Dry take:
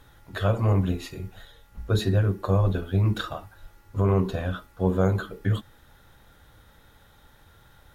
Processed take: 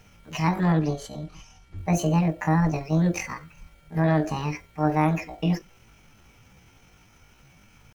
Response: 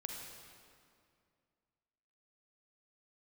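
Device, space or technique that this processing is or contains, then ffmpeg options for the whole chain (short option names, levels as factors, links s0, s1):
chipmunk voice: -filter_complex "[0:a]asettb=1/sr,asplit=3[s0][s1][s2];[s0]atrim=end=0.674[s3];[s1]atrim=start=0.67:end=1.81,asetpts=PTS-STARTPTS,afade=t=in:d=0.004:c=qsin,afade=t=out:st=1.136:d=0.004:c=qsin,lowpass=5400[s4];[s2]atrim=start=1.806[s5];[s3][s4]acrossfade=d=0.004:c1=hsin:c2=qsin[s6];[s6][s5]acrossfade=d=0.004:c1=qsin:c2=hsin,asetrate=72056,aresample=44100,atempo=0.612027"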